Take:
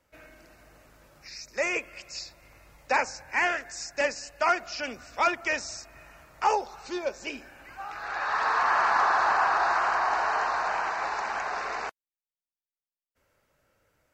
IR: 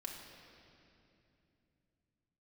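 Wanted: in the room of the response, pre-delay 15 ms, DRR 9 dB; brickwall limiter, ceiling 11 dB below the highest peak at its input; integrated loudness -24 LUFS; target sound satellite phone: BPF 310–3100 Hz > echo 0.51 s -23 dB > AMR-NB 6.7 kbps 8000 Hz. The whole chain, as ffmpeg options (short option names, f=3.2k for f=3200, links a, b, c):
-filter_complex "[0:a]alimiter=limit=-23.5dB:level=0:latency=1,asplit=2[a][b];[1:a]atrim=start_sample=2205,adelay=15[c];[b][c]afir=irnorm=-1:irlink=0,volume=-7dB[d];[a][d]amix=inputs=2:normalize=0,highpass=310,lowpass=3.1k,aecho=1:1:510:0.0708,volume=11dB" -ar 8000 -c:a libopencore_amrnb -b:a 6700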